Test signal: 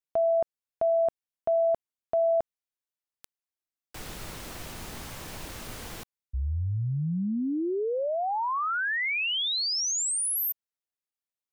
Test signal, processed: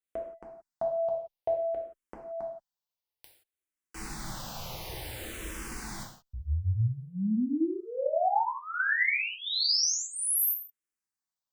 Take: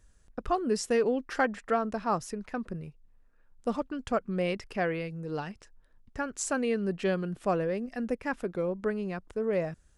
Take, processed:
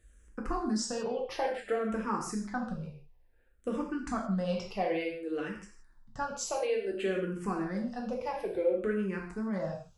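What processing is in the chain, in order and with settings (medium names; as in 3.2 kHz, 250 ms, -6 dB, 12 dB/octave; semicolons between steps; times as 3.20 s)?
compression, threshold -27 dBFS; gated-style reverb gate 200 ms falling, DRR -1 dB; barber-pole phaser -0.57 Hz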